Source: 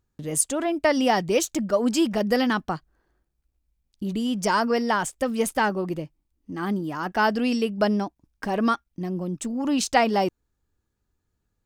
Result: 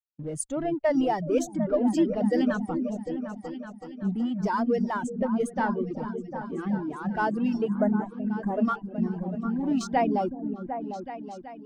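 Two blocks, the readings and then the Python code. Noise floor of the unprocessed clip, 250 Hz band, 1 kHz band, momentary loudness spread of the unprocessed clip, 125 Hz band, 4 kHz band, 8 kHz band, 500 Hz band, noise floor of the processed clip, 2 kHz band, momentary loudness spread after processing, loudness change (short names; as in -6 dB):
-77 dBFS, -0.5 dB, -4.5 dB, 10 LU, 0.0 dB, under -10 dB, -11.5 dB, -3.0 dB, -45 dBFS, -8.5 dB, 10 LU, -3.5 dB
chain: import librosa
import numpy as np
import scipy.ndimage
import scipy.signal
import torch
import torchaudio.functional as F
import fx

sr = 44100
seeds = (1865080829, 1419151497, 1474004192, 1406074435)

p1 = fx.law_mismatch(x, sr, coded='A')
p2 = fx.env_lowpass(p1, sr, base_hz=1200.0, full_db=-18.5)
p3 = fx.highpass(p2, sr, hz=50.0, slope=6)
p4 = fx.fuzz(p3, sr, gain_db=37.0, gate_db=-45.0)
p5 = p3 + (p4 * librosa.db_to_amplitude(-12.0))
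p6 = fx.low_shelf(p5, sr, hz=81.0, db=9.0)
p7 = fx.spec_repair(p6, sr, seeds[0], start_s=7.83, length_s=0.81, low_hz=2200.0, high_hz=6200.0, source='before')
p8 = p7 + fx.echo_opening(p7, sr, ms=376, hz=400, octaves=2, feedback_pct=70, wet_db=-3, dry=0)
p9 = fx.dereverb_blind(p8, sr, rt60_s=0.88)
p10 = fx.spectral_expand(p9, sr, expansion=1.5)
y = p10 * librosa.db_to_amplitude(-7.5)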